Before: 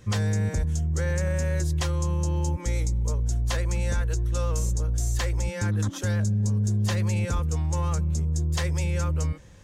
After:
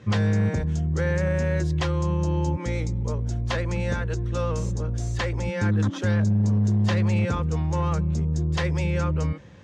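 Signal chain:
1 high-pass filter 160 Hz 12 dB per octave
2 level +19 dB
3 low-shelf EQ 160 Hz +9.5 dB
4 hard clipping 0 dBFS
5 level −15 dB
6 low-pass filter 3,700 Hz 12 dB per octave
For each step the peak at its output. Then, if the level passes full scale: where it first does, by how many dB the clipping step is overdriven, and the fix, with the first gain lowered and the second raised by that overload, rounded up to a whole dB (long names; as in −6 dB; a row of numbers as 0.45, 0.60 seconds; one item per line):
−16.0, +3.0, +4.5, 0.0, −15.0, −15.0 dBFS
step 2, 4.5 dB
step 2 +14 dB, step 5 −10 dB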